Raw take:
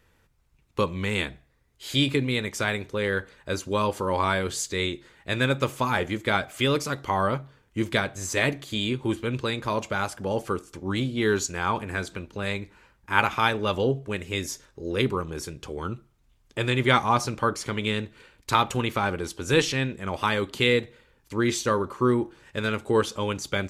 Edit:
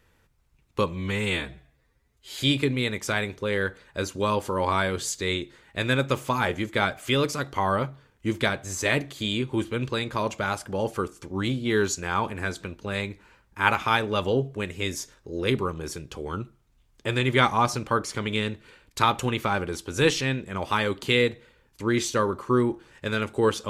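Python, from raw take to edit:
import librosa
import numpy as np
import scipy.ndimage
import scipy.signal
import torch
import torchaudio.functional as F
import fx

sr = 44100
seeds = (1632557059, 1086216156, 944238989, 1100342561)

y = fx.edit(x, sr, fx.stretch_span(start_s=0.92, length_s=0.97, factor=1.5), tone=tone)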